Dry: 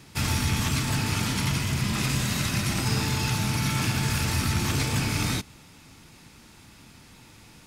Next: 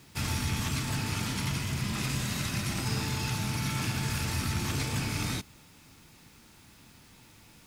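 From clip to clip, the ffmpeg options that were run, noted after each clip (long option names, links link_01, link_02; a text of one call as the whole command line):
ffmpeg -i in.wav -af "acrusher=bits=8:mix=0:aa=0.000001,volume=-5.5dB" out.wav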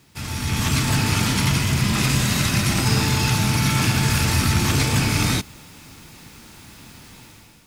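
ffmpeg -i in.wav -af "dynaudnorm=framelen=150:gausssize=7:maxgain=12dB" out.wav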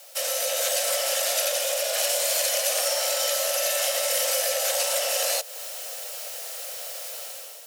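ffmpeg -i in.wav -af "acompressor=threshold=-30dB:ratio=3,afreqshift=440,crystalizer=i=3:c=0" out.wav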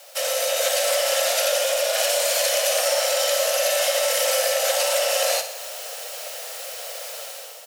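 ffmpeg -i in.wav -filter_complex "[0:a]highshelf=frequency=5100:gain=-6.5,asplit=2[link_01][link_02];[link_02]aecho=0:1:61|122|183|244|305|366|427:0.316|0.187|0.11|0.0649|0.0383|0.0226|0.0133[link_03];[link_01][link_03]amix=inputs=2:normalize=0,volume=5dB" out.wav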